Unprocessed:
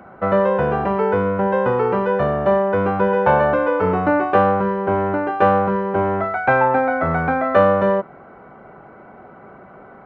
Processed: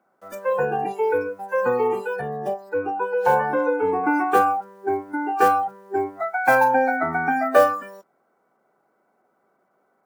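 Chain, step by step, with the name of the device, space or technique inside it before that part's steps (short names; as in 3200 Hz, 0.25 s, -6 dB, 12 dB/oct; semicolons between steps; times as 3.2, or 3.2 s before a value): early digital voice recorder (BPF 250–3600 Hz; block floating point 5-bit); spectral noise reduction 24 dB; 2.21–4.04 high shelf 2100 Hz -9.5 dB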